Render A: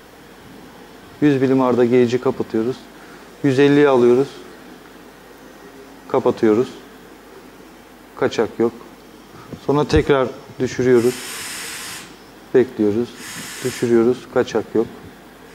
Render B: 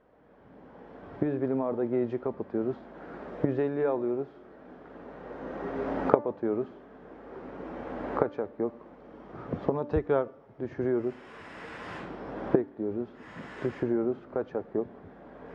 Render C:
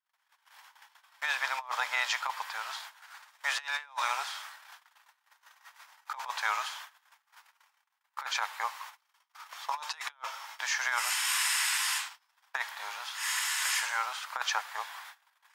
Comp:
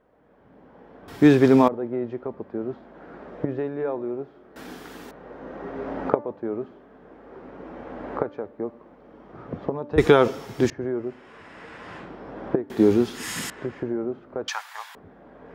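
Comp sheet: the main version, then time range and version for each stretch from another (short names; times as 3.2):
B
1.08–1.68 from A
4.56–5.11 from A
9.98–10.7 from A
12.7–13.5 from A
14.48–14.95 from C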